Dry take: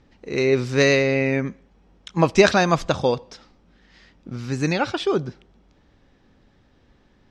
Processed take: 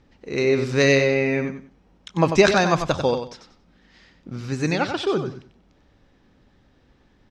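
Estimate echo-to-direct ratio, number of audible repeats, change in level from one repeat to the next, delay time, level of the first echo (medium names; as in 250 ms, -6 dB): -8.0 dB, 3, -13.0 dB, 94 ms, -8.0 dB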